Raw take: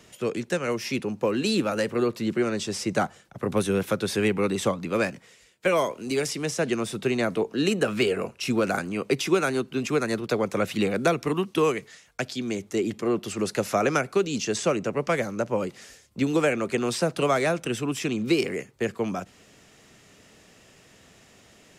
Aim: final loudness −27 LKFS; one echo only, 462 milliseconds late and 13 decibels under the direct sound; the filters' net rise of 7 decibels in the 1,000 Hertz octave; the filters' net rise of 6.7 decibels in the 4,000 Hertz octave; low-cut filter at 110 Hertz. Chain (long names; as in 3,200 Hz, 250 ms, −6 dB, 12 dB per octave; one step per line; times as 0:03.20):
high-pass filter 110 Hz
parametric band 1,000 Hz +9 dB
parametric band 4,000 Hz +8 dB
single-tap delay 462 ms −13 dB
level −3.5 dB